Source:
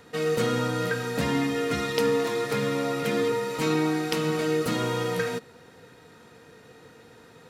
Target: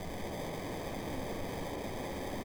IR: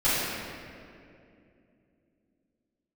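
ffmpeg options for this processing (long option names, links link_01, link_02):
-filter_complex "[0:a]firequalizer=gain_entry='entry(150,0);entry(250,-12);entry(410,-8);entry(820,8);entry(1200,-2);entry(1700,-20);entry(4800,-11);entry(8400,-22)':delay=0.05:min_phase=1,acompressor=threshold=-45dB:ratio=5,asetrate=135387,aresample=44100,acrusher=samples=32:mix=1:aa=0.000001,aeval=exprs='(mod(422*val(0)+1,2)-1)/422':channel_layout=same,asplit=9[link_01][link_02][link_03][link_04][link_05][link_06][link_07][link_08][link_09];[link_02]adelay=198,afreqshift=79,volume=-9.5dB[link_10];[link_03]adelay=396,afreqshift=158,volume=-13.4dB[link_11];[link_04]adelay=594,afreqshift=237,volume=-17.3dB[link_12];[link_05]adelay=792,afreqshift=316,volume=-21.1dB[link_13];[link_06]adelay=990,afreqshift=395,volume=-25dB[link_14];[link_07]adelay=1188,afreqshift=474,volume=-28.9dB[link_15];[link_08]adelay=1386,afreqshift=553,volume=-32.8dB[link_16];[link_09]adelay=1584,afreqshift=632,volume=-36.6dB[link_17];[link_01][link_10][link_11][link_12][link_13][link_14][link_15][link_16][link_17]amix=inputs=9:normalize=0,asplit=2[link_18][link_19];[1:a]atrim=start_sample=2205[link_20];[link_19][link_20]afir=irnorm=-1:irlink=0,volume=-17.5dB[link_21];[link_18][link_21]amix=inputs=2:normalize=0,volume=14.5dB"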